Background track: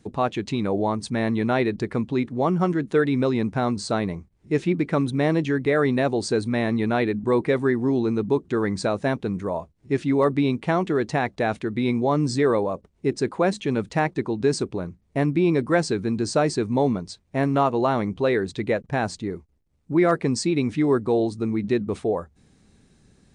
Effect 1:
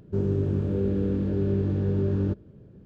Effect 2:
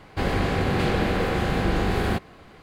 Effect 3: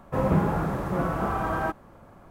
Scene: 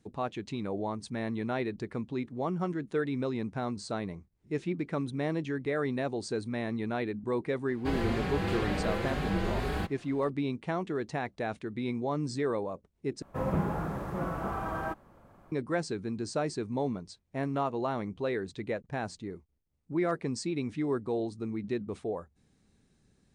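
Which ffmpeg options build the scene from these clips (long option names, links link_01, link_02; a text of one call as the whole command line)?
ffmpeg -i bed.wav -i cue0.wav -i cue1.wav -i cue2.wav -filter_complex "[0:a]volume=-10.5dB[link_01];[2:a]asplit=2[link_02][link_03];[link_03]adelay=5.2,afreqshift=2.1[link_04];[link_02][link_04]amix=inputs=2:normalize=1[link_05];[link_01]asplit=2[link_06][link_07];[link_06]atrim=end=13.224[link_08];[3:a]atrim=end=2.3,asetpts=PTS-STARTPTS,volume=-7dB[link_09];[link_07]atrim=start=15.516[link_10];[link_05]atrim=end=2.62,asetpts=PTS-STARTPTS,volume=-5.5dB,afade=type=in:duration=0.004:curve=hsin,afade=type=out:start_time=2.616:duration=0.004:curve=hsin,adelay=7680[link_11];[link_08][link_09]acrossfade=duration=0.004:curve1=hsin:curve2=hsin[link_12];[link_12][link_10]acrossfade=duration=0.004:curve1=hsin:curve2=hsin[link_13];[link_13][link_11]amix=inputs=2:normalize=0" out.wav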